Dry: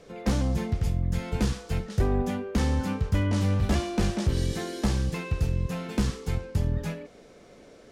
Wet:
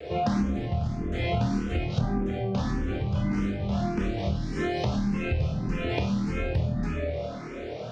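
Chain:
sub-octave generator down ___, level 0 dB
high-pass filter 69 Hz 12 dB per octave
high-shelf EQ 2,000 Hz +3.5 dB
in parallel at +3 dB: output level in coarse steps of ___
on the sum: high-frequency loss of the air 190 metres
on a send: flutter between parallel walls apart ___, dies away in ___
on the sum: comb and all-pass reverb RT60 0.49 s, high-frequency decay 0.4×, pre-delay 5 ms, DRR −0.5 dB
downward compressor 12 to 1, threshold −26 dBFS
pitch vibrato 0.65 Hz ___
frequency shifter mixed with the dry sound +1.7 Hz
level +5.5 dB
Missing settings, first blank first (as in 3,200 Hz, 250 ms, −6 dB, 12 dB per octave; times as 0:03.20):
1 octave, 13 dB, 4.4 metres, 0.4 s, 28 cents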